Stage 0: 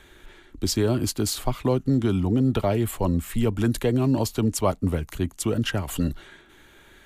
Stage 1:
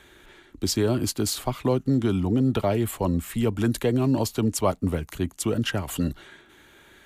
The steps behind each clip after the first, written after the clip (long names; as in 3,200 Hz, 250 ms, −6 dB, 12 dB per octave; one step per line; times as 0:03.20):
high-pass filter 78 Hz 6 dB per octave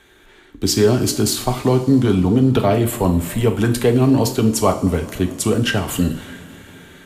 automatic gain control gain up to 7 dB
coupled-rooms reverb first 0.44 s, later 3.6 s, from −18 dB, DRR 4 dB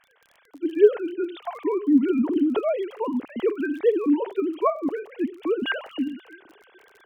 three sine waves on the formant tracks
surface crackle 31 per second −33 dBFS
level −7 dB